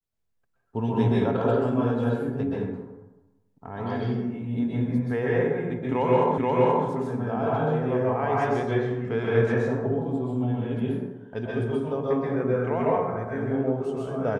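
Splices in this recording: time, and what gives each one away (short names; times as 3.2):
6.38 repeat of the last 0.48 s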